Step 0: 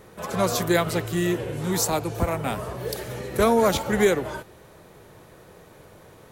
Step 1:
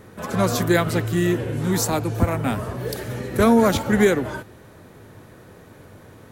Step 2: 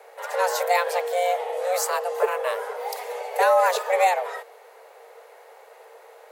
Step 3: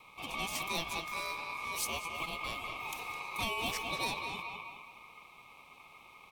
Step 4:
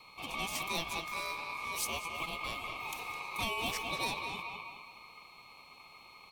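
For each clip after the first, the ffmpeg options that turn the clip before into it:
ffmpeg -i in.wav -af "equalizer=frequency=100:width_type=o:width=0.67:gain=9,equalizer=frequency=250:width_type=o:width=0.67:gain=9,equalizer=frequency=1600:width_type=o:width=0.67:gain=4" out.wav
ffmpeg -i in.wav -af "afreqshift=360,volume=-3dB" out.wav
ffmpeg -i in.wav -filter_complex "[0:a]asplit=2[link_01][link_02];[link_02]adelay=209,lowpass=frequency=2900:poles=1,volume=-7dB,asplit=2[link_03][link_04];[link_04]adelay=209,lowpass=frequency=2900:poles=1,volume=0.44,asplit=2[link_05][link_06];[link_06]adelay=209,lowpass=frequency=2900:poles=1,volume=0.44,asplit=2[link_07][link_08];[link_08]adelay=209,lowpass=frequency=2900:poles=1,volume=0.44,asplit=2[link_09][link_10];[link_10]adelay=209,lowpass=frequency=2900:poles=1,volume=0.44[link_11];[link_01][link_03][link_05][link_07][link_09][link_11]amix=inputs=6:normalize=0,acrossover=split=1400|3400|6000[link_12][link_13][link_14][link_15];[link_12]acompressor=threshold=-30dB:ratio=6[link_16];[link_16][link_13][link_14][link_15]amix=inputs=4:normalize=0,aeval=exprs='val(0)*sin(2*PI*1700*n/s)':channel_layout=same,volume=-5.5dB" out.wav
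ffmpeg -i in.wav -af "aeval=exprs='val(0)+0.001*sin(2*PI*4300*n/s)':channel_layout=same" out.wav

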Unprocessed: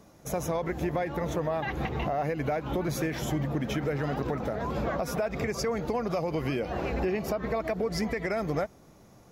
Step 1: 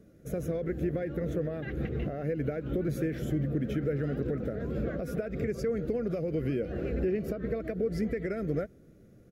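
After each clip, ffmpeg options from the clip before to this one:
ffmpeg -i in.wav -af "firequalizer=gain_entry='entry(490,0);entry(920,-28);entry(1400,-6);entry(2300,-10);entry(5800,-16);entry(8600,-10)':delay=0.05:min_phase=1" out.wav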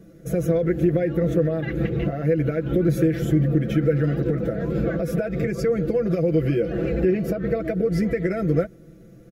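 ffmpeg -i in.wav -af "aecho=1:1:6:0.8,volume=7dB" out.wav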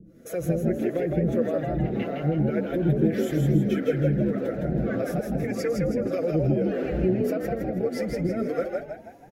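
ffmpeg -i in.wav -filter_complex "[0:a]acrossover=split=400[link_01][link_02];[link_01]aeval=exprs='val(0)*(1-1/2+1/2*cos(2*PI*1.7*n/s))':channel_layout=same[link_03];[link_02]aeval=exprs='val(0)*(1-1/2-1/2*cos(2*PI*1.7*n/s))':channel_layout=same[link_04];[link_03][link_04]amix=inputs=2:normalize=0,asplit=2[link_05][link_06];[link_06]asplit=5[link_07][link_08][link_09][link_10][link_11];[link_07]adelay=161,afreqshift=61,volume=-3.5dB[link_12];[link_08]adelay=322,afreqshift=122,volume=-11dB[link_13];[link_09]adelay=483,afreqshift=183,volume=-18.6dB[link_14];[link_10]adelay=644,afreqshift=244,volume=-26.1dB[link_15];[link_11]adelay=805,afreqshift=305,volume=-33.6dB[link_16];[link_12][link_13][link_14][link_15][link_16]amix=inputs=5:normalize=0[link_17];[link_05][link_17]amix=inputs=2:normalize=0" out.wav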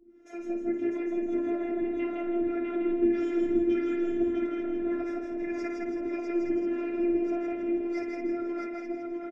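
ffmpeg -i in.wav -af "highpass=frequency=160:width=0.5412,highpass=frequency=160:width=1.3066,equalizer=frequency=210:width_type=q:width=4:gain=6,equalizer=frequency=320:width_type=q:width=4:gain=6,equalizer=frequency=490:width_type=q:width=4:gain=-7,equalizer=frequency=1000:width_type=q:width=4:gain=5,equalizer=frequency=2100:width_type=q:width=4:gain=7,equalizer=frequency=4300:width_type=q:width=4:gain=-10,lowpass=frequency=5600:width=0.5412,lowpass=frequency=5600:width=1.3066,afftfilt=real='hypot(re,im)*cos(PI*b)':imag='0':win_size=512:overlap=0.75,aecho=1:1:53|651|869:0.447|0.631|0.316,volume=-4.5dB" out.wav

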